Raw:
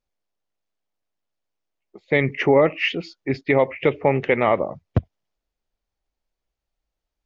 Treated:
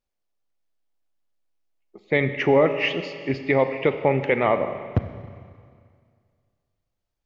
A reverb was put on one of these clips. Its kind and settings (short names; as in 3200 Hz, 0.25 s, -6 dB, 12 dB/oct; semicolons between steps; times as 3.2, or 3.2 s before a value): Schroeder reverb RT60 2.1 s, combs from 30 ms, DRR 9 dB; gain -2 dB